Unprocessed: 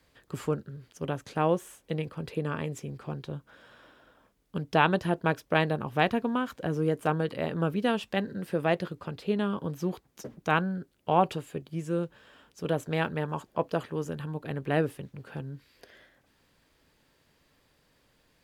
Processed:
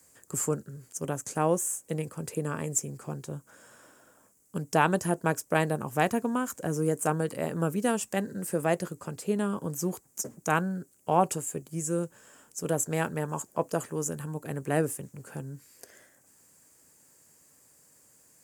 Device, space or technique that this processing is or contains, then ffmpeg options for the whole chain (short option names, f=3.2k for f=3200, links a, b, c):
budget condenser microphone: -af "highpass=95,highshelf=f=5.3k:t=q:w=3:g=13.5"